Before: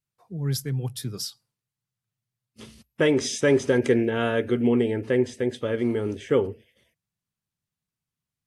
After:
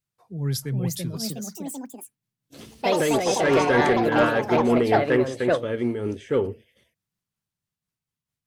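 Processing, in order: ever faster or slower copies 472 ms, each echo +4 st, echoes 3; 3.38–5.58 s: peaking EQ 1.3 kHz +9 dB 1.4 oct; saturation -11.5 dBFS, distortion -17 dB; random flutter of the level, depth 65%; trim +3.5 dB

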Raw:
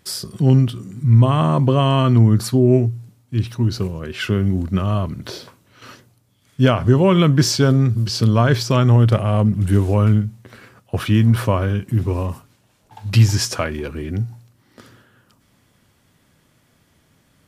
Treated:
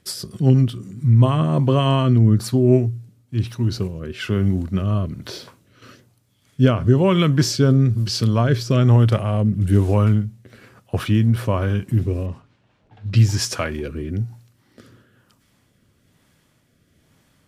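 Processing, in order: rotary cabinet horn 8 Hz, later 1.1 Hz, at 0.63 s; 12.26–13.34 s: level-controlled noise filter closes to 2.9 kHz, open at -13 dBFS

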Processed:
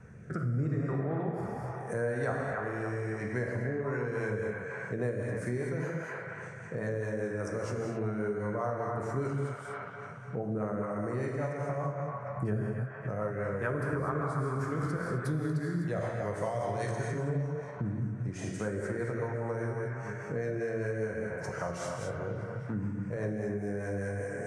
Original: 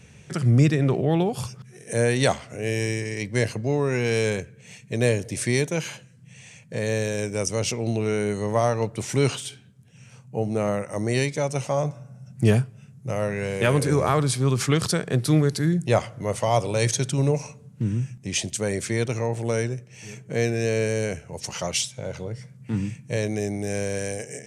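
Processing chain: resonant high shelf 2.1 kHz -13 dB, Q 3, from 15.26 s -6 dB, from 16.89 s -13 dB; gated-style reverb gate 280 ms flat, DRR -1 dB; rotary cabinet horn 0.8 Hz, later 5 Hz, at 3.44 s; feedback echo behind a band-pass 285 ms, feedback 47%, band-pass 1.4 kHz, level -5.5 dB; compression 3:1, threshold -34 dBFS, peak gain reduction 17 dB

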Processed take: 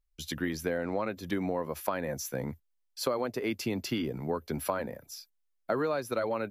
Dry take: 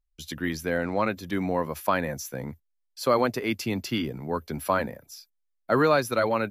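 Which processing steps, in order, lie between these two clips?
dynamic bell 460 Hz, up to +5 dB, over -35 dBFS, Q 0.75; compression 6:1, threshold -28 dBFS, peak gain reduction 14 dB

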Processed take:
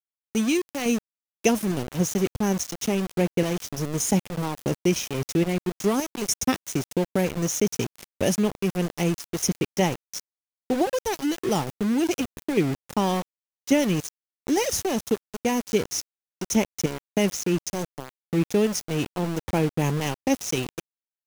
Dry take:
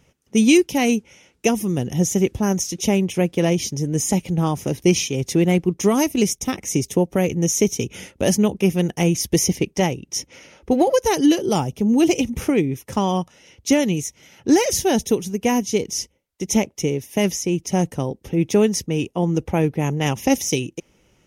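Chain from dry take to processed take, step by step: random-step tremolo, depth 80%; gain riding 0.5 s; small samples zeroed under -27 dBFS; trim -1.5 dB

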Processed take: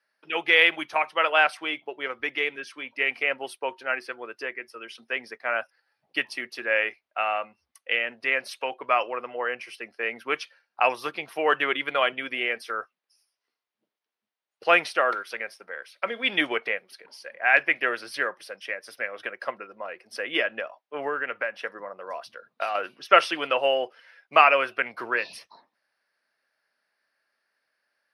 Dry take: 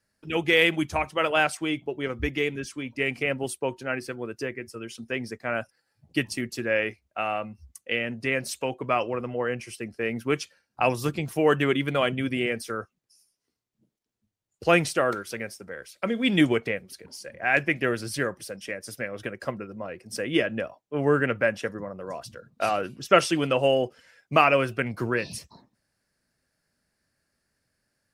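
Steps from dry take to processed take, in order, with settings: high-pass 750 Hz 12 dB/octave; 20.46–22.75 s: compression 5:1, threshold -30 dBFS, peak gain reduction 9 dB; boxcar filter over 6 samples; trim +5 dB

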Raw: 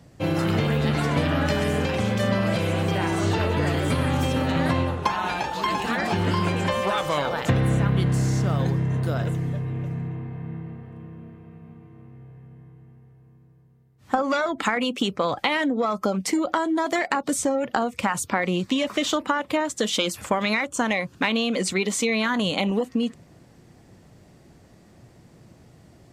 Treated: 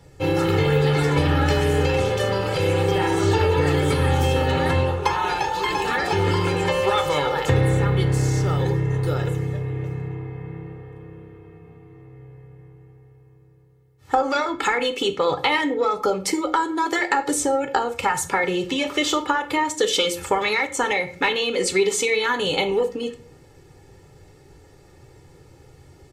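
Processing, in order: comb 2.3 ms, depth 87%; on a send: reverberation RT60 0.50 s, pre-delay 4 ms, DRR 7 dB

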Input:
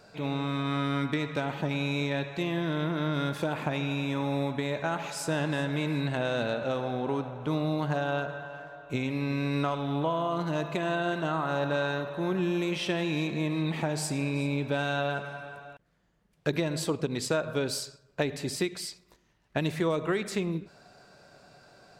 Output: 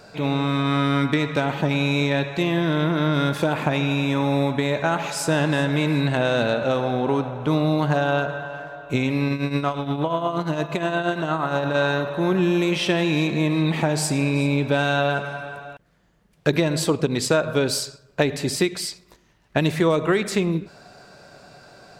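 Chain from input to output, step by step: 9.28–11.74 s: tremolo triangle 8.5 Hz, depth 80% -> 55%; trim +8.5 dB

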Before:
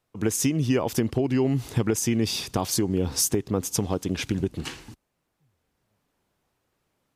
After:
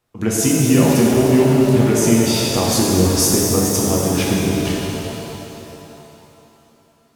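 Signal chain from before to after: pitch-shifted reverb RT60 3.1 s, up +7 st, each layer -8 dB, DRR -4.5 dB; trim +3.5 dB

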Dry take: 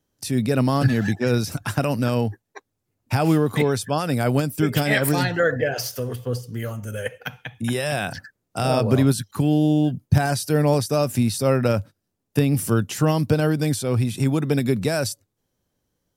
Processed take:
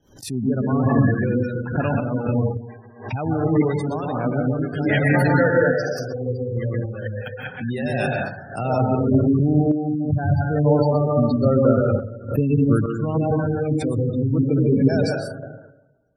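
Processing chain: 4.76–7.05 s: chunks repeated in reverse 189 ms, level -9 dB; plate-style reverb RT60 1.2 s, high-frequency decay 0.45×, pre-delay 110 ms, DRR -2 dB; spectral gate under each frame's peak -20 dB strong; random-step tremolo, depth 55%; swell ahead of each attack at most 130 dB/s

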